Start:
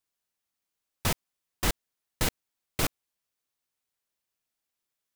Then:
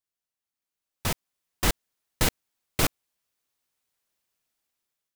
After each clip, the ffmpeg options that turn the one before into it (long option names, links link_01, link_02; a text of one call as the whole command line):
ffmpeg -i in.wav -af "dynaudnorm=framelen=460:gausssize=5:maxgain=14dB,volume=-6.5dB" out.wav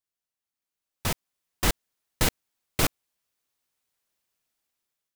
ffmpeg -i in.wav -af anull out.wav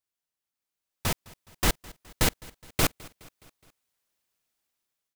ffmpeg -i in.wav -af "aecho=1:1:209|418|627|836:0.075|0.0427|0.0244|0.0139" out.wav